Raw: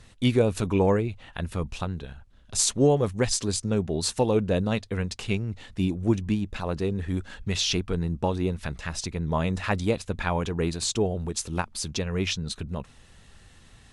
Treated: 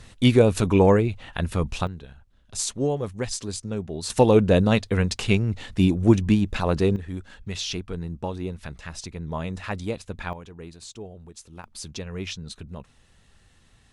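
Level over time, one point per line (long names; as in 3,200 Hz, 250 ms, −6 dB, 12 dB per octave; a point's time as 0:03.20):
+5 dB
from 0:01.87 −4.5 dB
from 0:04.10 +6.5 dB
from 0:06.96 −4.5 dB
from 0:10.33 −14 dB
from 0:11.64 −5.5 dB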